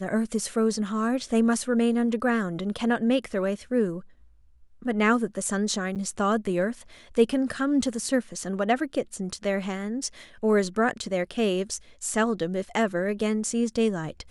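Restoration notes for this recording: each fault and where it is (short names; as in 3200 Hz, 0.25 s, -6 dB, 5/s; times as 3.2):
5.95–5.96 gap 8.2 ms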